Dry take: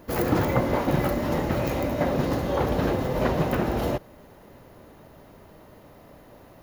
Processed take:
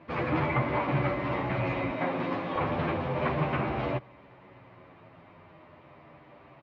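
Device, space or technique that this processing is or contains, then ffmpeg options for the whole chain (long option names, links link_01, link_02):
barber-pole flanger into a guitar amplifier: -filter_complex "[0:a]asplit=2[link_01][link_02];[link_02]adelay=9.6,afreqshift=-0.34[link_03];[link_01][link_03]amix=inputs=2:normalize=1,asoftclip=type=tanh:threshold=-18.5dB,highpass=94,equalizer=frequency=130:width_type=q:width=4:gain=4,equalizer=frequency=220:width_type=q:width=4:gain=-5,equalizer=frequency=460:width_type=q:width=4:gain=-5,equalizer=frequency=1100:width_type=q:width=4:gain=6,equalizer=frequency=2300:width_type=q:width=4:gain=9,lowpass=frequency=3500:width=0.5412,lowpass=frequency=3500:width=1.3066,asettb=1/sr,asplit=3[link_04][link_05][link_06];[link_04]atrim=end=1.914[link_07];[link_05]atrim=start=1.91:end=2.56,asetpts=PTS-STARTPTS,afade=type=in:duration=0.004:curve=qsin,afade=type=out:start_time=0.646:duration=0.004:curve=qsin,highpass=180[link_08];[link_06]atrim=start=2.556[link_09];[link_07][link_08]acrossfade=duration=0.004:curve1=hsin:curve2=qsin[link_10];[link_10][link_09]acrossfade=duration=0.004:curve1=qsin:curve2=hsin"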